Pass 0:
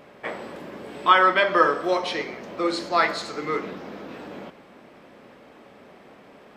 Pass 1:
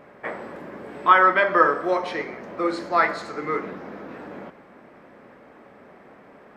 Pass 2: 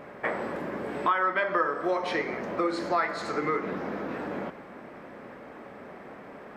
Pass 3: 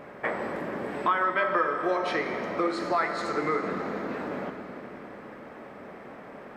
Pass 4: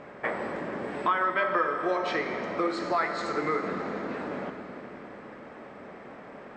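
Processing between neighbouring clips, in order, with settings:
resonant high shelf 2.4 kHz -7 dB, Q 1.5
compression 4:1, threshold -29 dBFS, peak gain reduction 16.5 dB; trim +4 dB
algorithmic reverb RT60 3.9 s, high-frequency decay 0.95×, pre-delay 65 ms, DRR 8 dB
elliptic low-pass 8 kHz, stop band 40 dB

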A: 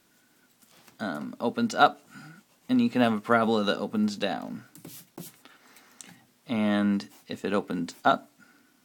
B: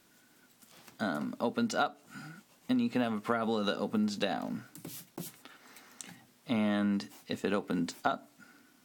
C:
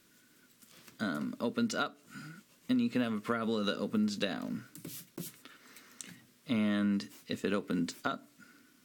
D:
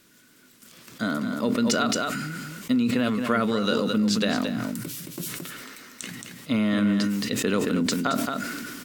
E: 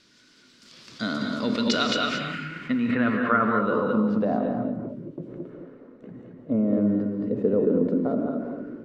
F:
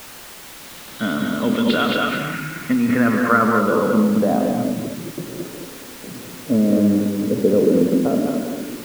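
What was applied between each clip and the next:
compression 16:1, threshold -26 dBFS, peak gain reduction 14.5 dB
peaking EQ 790 Hz -14 dB 0.47 oct
on a send: delay 222 ms -8.5 dB; on the sum: decay stretcher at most 22 dB/s; trim +7 dB
low-pass sweep 4.8 kHz -> 520 Hz, 1.40–4.87 s; gated-style reverb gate 250 ms rising, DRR 3 dB; trim -2.5 dB
knee-point frequency compression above 2.5 kHz 1.5:1; added noise white -40 dBFS; treble shelf 3.6 kHz -7.5 dB; trim +6.5 dB

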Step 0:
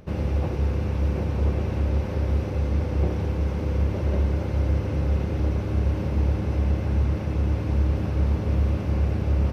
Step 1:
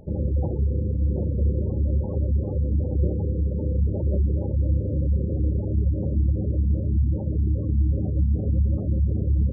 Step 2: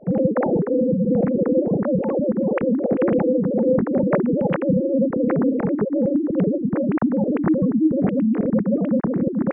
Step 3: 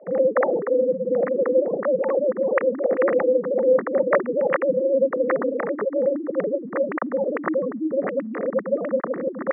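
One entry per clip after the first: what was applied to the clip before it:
spectral gate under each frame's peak -20 dB strong; trim +1 dB
formants replaced by sine waves; trim +2.5 dB
cabinet simulation 480–2400 Hz, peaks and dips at 540 Hz +6 dB, 800 Hz -3 dB, 1.2 kHz +7 dB, 1.9 kHz +10 dB

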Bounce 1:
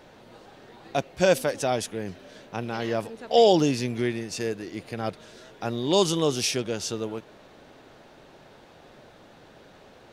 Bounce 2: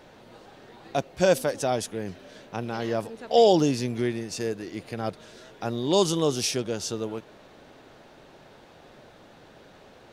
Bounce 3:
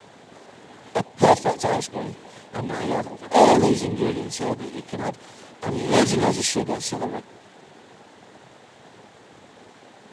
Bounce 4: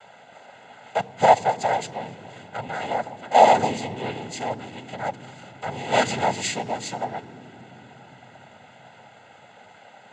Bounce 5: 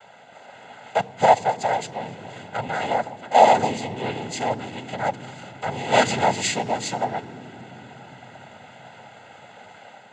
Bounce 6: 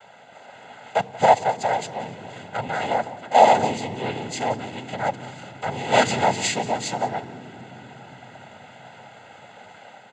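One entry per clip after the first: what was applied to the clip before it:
dynamic bell 2.4 kHz, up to -4 dB, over -43 dBFS, Q 1.2
noise-vocoded speech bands 6; trim +4 dB
reverberation RT60 3.5 s, pre-delay 3 ms, DRR 21.5 dB; trim -7.5 dB
level rider gain up to 4 dB
delay 180 ms -19 dB

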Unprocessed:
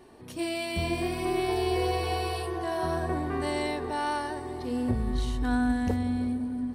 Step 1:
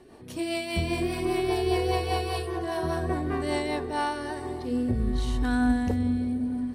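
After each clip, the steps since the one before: rotary cabinet horn 5 Hz, later 0.8 Hz, at 3.63 s; trim +3.5 dB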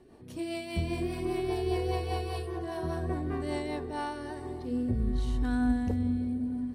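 bass shelf 440 Hz +6.5 dB; trim -8.5 dB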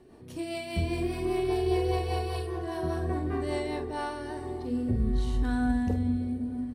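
doubling 46 ms -8.5 dB; trim +1.5 dB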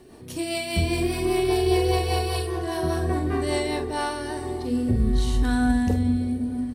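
treble shelf 3.1 kHz +9 dB; trim +5.5 dB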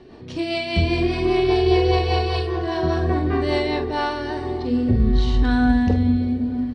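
low-pass 4.8 kHz 24 dB/octave; trim +4 dB

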